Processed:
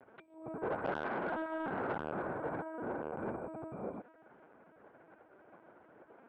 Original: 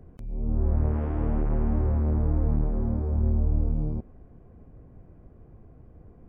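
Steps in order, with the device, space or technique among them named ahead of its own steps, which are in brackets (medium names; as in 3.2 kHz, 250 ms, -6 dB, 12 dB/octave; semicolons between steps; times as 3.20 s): talking toy (LPC vocoder at 8 kHz pitch kept; high-pass 650 Hz 12 dB/octave; peaking EQ 1.5 kHz +10 dB 0.26 oct; saturation -33 dBFS, distortion -17 dB); trim +5.5 dB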